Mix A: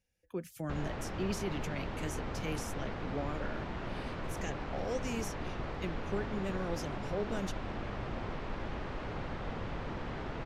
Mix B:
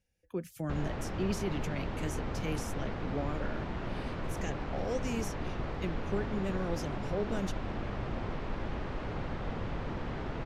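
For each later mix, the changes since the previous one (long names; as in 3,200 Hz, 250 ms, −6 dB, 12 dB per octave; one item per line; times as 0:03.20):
master: add low-shelf EQ 460 Hz +3.5 dB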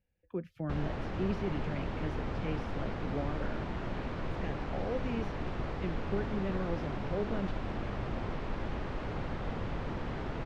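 speech: add high-frequency loss of the air 350 metres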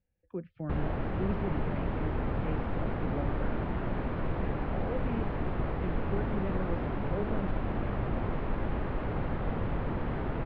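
background +5.0 dB
master: add high-frequency loss of the air 390 metres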